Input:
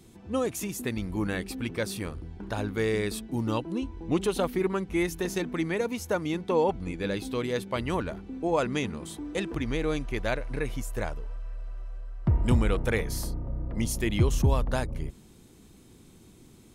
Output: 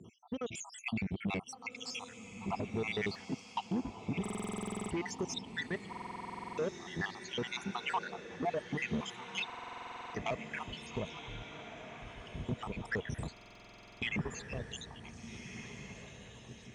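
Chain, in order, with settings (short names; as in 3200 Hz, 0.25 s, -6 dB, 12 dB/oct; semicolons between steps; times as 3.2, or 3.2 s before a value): random spectral dropouts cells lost 78%; compressor, threshold -30 dBFS, peak gain reduction 11.5 dB; limiter -29 dBFS, peak gain reduction 9 dB; AGC gain up to 5 dB; soft clip -30 dBFS, distortion -14 dB; speaker cabinet 120–5900 Hz, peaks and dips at 310 Hz -8 dB, 540 Hz -7 dB, 1500 Hz -4 dB, 4500 Hz -8 dB; diffused feedback echo 1.563 s, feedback 42%, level -9.5 dB; stuck buffer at 4.21/5.88/9.45/13.32, samples 2048, times 14; gain +4.5 dB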